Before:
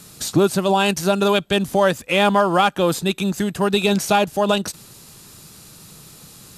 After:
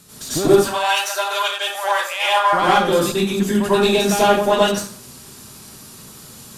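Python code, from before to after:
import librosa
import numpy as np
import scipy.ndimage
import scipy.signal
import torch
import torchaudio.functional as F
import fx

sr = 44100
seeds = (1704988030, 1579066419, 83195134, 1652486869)

y = fx.diode_clip(x, sr, knee_db=-16.0)
y = fx.highpass(y, sr, hz=740.0, slope=24, at=(0.56, 2.53))
y = fx.rev_plate(y, sr, seeds[0], rt60_s=0.5, hf_ratio=0.75, predelay_ms=80, drr_db=-9.5)
y = y * 10.0 ** (-5.5 / 20.0)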